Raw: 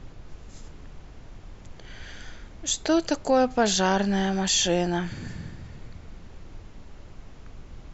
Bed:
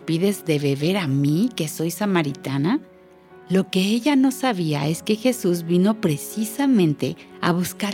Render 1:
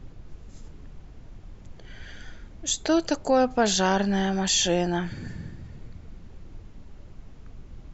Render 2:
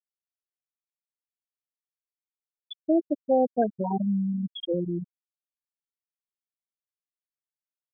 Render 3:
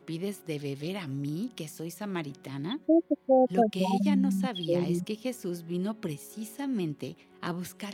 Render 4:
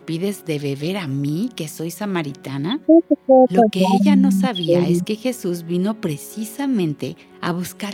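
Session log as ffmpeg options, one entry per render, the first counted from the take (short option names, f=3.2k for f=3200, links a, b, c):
-af "afftdn=nr=6:nf=-46"
-af "highpass=f=55:w=0.5412,highpass=f=55:w=1.3066,afftfilt=real='re*gte(hypot(re,im),0.447)':imag='im*gte(hypot(re,im),0.447)':win_size=1024:overlap=0.75"
-filter_complex "[1:a]volume=-14dB[a];[0:a][a]amix=inputs=2:normalize=0"
-af "volume=11.5dB,alimiter=limit=-2dB:level=0:latency=1"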